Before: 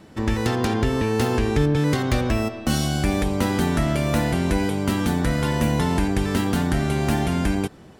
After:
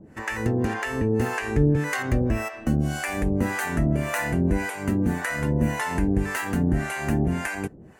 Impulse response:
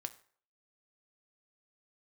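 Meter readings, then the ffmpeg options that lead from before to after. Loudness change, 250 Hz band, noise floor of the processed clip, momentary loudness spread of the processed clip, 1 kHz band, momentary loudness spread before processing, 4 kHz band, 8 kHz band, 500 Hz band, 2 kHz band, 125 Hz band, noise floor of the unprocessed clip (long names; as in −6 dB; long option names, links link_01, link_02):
−2.5 dB, −3.0 dB, −46 dBFS, 3 LU, −3.5 dB, 2 LU, −10.0 dB, −3.5 dB, −4.0 dB, +1.5 dB, −2.5 dB, −45 dBFS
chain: -filter_complex "[0:a]acrossover=split=610[link_01][link_02];[link_01]aeval=exprs='val(0)*(1-1/2+1/2*cos(2*PI*1.8*n/s))':channel_layout=same[link_03];[link_02]aeval=exprs='val(0)*(1-1/2-1/2*cos(2*PI*1.8*n/s))':channel_layout=same[link_04];[link_03][link_04]amix=inputs=2:normalize=0,superequalizer=11b=1.78:13b=0.316:14b=0.447,volume=1.5dB"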